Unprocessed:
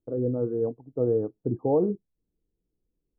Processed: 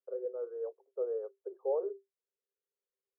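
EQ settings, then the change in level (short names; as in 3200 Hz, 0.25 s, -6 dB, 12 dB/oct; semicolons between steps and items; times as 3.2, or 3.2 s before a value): rippled Chebyshev high-pass 380 Hz, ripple 9 dB; -2.5 dB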